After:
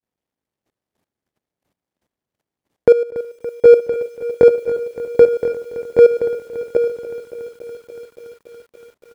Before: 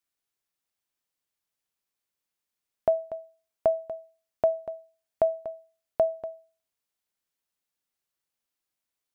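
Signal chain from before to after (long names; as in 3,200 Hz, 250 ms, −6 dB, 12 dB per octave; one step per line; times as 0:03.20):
running median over 25 samples
high-pass filter 47 Hz 12 dB per octave
shaped tremolo saw up 2.9 Hz, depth 85%
low-shelf EQ 86 Hz −8 dB
single-tap delay 757 ms −4.5 dB
pitch shifter −5.5 semitones
low-shelf EQ 320 Hz +5 dB
output level in coarse steps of 14 dB
boost into a limiter +26 dB
feedback echo at a low word length 284 ms, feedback 80%, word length 7 bits, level −14.5 dB
level −1 dB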